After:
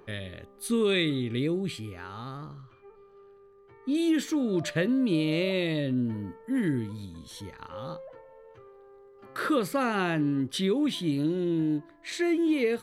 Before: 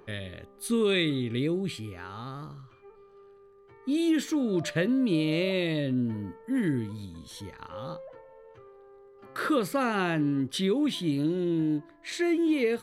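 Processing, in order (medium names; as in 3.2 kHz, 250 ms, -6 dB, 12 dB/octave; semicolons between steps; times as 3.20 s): 2.37–3.95 s: treble shelf 7.4 kHz -10.5 dB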